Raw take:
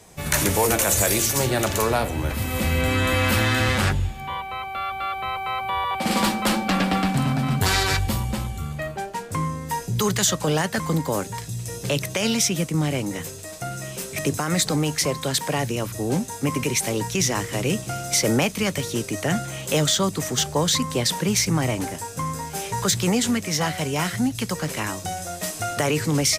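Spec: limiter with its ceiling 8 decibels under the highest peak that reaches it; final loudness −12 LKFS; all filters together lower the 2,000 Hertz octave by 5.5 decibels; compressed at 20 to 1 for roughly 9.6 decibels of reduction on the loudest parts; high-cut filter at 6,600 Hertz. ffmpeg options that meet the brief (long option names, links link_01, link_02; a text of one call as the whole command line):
ffmpeg -i in.wav -af "lowpass=6600,equalizer=frequency=2000:width_type=o:gain=-7,acompressor=threshold=-27dB:ratio=20,volume=21dB,alimiter=limit=-2.5dB:level=0:latency=1" out.wav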